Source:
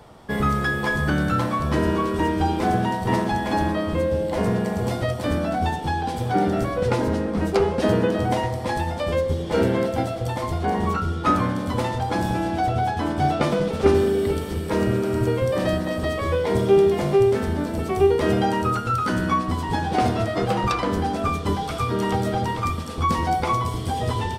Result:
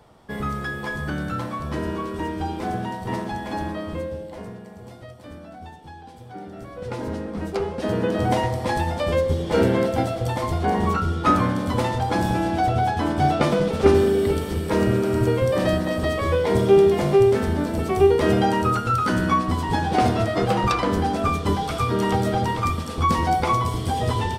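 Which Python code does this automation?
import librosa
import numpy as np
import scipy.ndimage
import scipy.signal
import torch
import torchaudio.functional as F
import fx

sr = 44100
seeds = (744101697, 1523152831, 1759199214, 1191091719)

y = fx.gain(x, sr, db=fx.line((3.96, -6.0), (4.6, -17.0), (6.5, -17.0), (7.09, -6.0), (7.82, -6.0), (8.27, 1.5)))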